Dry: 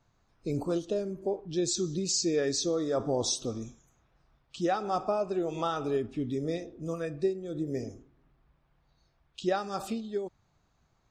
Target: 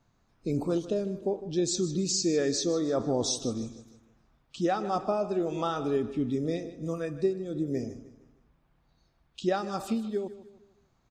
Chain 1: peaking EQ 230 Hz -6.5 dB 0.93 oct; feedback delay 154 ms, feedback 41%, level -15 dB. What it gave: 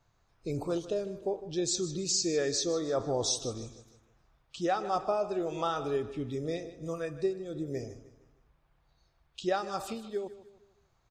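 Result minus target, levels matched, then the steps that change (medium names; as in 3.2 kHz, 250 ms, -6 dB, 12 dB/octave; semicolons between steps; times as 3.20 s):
250 Hz band -4.0 dB
change: peaking EQ 230 Hz +5 dB 0.93 oct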